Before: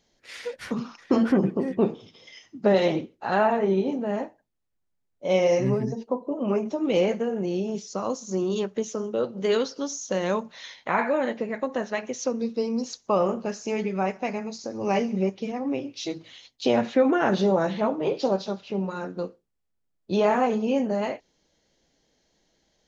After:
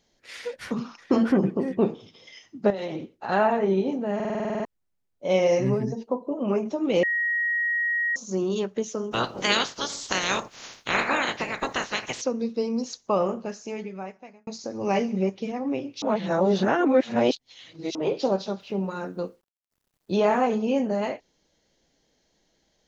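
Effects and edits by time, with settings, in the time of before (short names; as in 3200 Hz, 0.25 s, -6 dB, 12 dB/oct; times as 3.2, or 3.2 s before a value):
2.7–3.29 compressor 16:1, threshold -27 dBFS
4.15 stutter in place 0.05 s, 10 plays
7.03–8.16 bleep 1890 Hz -22 dBFS
9.11–12.2 spectral limiter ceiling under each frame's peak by 29 dB
13.03–14.47 fade out
16.02–17.95 reverse
18.6–20.13 requantised 12-bit, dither none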